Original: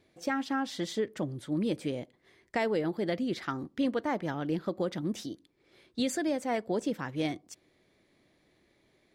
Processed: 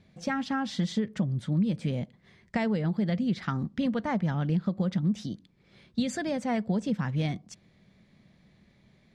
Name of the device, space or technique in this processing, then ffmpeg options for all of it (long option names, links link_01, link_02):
jukebox: -af "lowpass=6900,lowshelf=frequency=250:width_type=q:width=3:gain=7.5,acompressor=threshold=-28dB:ratio=3,volume=3dB"